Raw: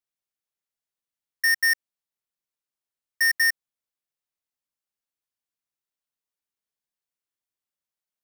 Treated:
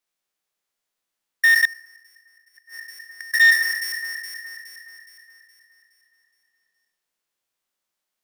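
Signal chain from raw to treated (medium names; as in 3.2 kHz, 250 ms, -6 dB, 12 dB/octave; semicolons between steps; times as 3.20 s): spectral sustain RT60 0.57 s; treble shelf 9.3 kHz -4 dB; echo whose repeats swap between lows and highs 209 ms, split 2 kHz, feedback 67%, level -6 dB; 1.65–3.34 s: inverted gate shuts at -33 dBFS, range -27 dB; peaking EQ 76 Hz -10 dB 2.3 oct; transformer saturation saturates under 2.3 kHz; trim +8 dB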